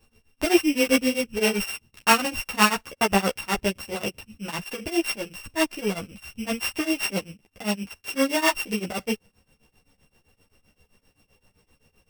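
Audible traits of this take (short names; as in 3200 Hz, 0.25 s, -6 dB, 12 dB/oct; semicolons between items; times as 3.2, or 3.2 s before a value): a buzz of ramps at a fixed pitch in blocks of 16 samples; tremolo triangle 7.7 Hz, depth 100%; a shimmering, thickened sound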